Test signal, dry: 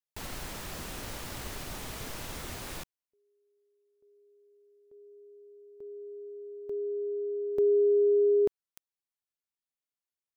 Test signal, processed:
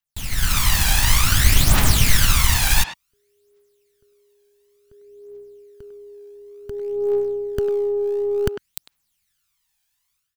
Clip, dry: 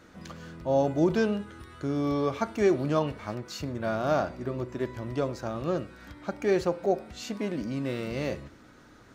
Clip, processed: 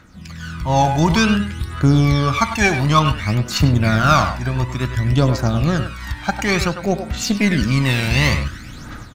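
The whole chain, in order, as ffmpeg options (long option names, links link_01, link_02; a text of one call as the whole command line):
ffmpeg -i in.wav -filter_complex "[0:a]aphaser=in_gain=1:out_gain=1:delay=1.3:decay=0.64:speed=0.56:type=triangular,dynaudnorm=framelen=290:gausssize=3:maxgain=15dB,equalizer=frequency=430:width_type=o:width=1.9:gain=-15,aeval=exprs='0.447*(cos(1*acos(clip(val(0)/0.447,-1,1)))-cos(1*PI/2))+0.01*(cos(7*acos(clip(val(0)/0.447,-1,1)))-cos(7*PI/2))+0.00891*(cos(8*acos(clip(val(0)/0.447,-1,1)))-cos(8*PI/2))':channel_layout=same,asplit=2[link_01][link_02];[link_02]adelay=100,highpass=300,lowpass=3400,asoftclip=type=hard:threshold=-15.5dB,volume=-8dB[link_03];[link_01][link_03]amix=inputs=2:normalize=0,volume=6.5dB" out.wav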